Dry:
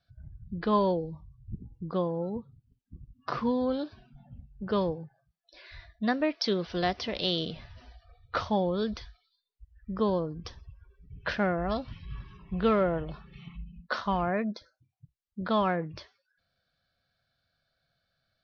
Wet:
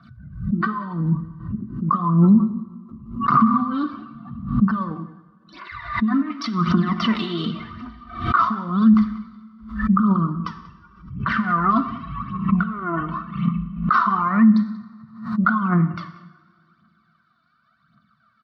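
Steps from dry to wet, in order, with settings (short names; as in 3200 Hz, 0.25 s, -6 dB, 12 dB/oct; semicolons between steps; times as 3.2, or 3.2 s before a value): negative-ratio compressor -31 dBFS, ratio -0.5; phaser 0.89 Hz, delay 3.1 ms, feedback 69%; double band-pass 510 Hz, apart 2.4 oct; notch comb 830 Hz; outdoor echo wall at 32 m, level -18 dB; two-slope reverb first 0.88 s, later 2.6 s, from -18 dB, DRR 9.5 dB; maximiser +29 dB; backwards sustainer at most 100 dB/s; gain -6 dB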